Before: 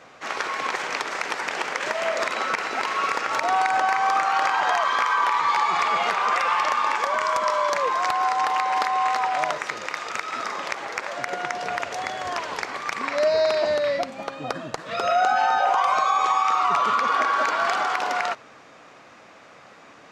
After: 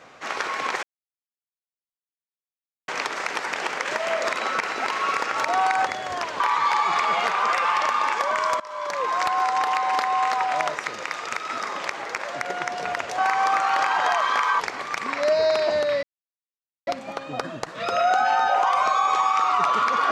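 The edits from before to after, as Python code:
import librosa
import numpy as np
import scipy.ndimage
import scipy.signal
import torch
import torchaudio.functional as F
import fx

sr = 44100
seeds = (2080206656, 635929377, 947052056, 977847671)

y = fx.edit(x, sr, fx.insert_silence(at_s=0.83, length_s=2.05),
    fx.swap(start_s=3.81, length_s=1.42, other_s=12.01, other_length_s=0.54),
    fx.fade_in_from(start_s=7.43, length_s=0.57, floor_db=-23.5),
    fx.insert_silence(at_s=13.98, length_s=0.84), tone=tone)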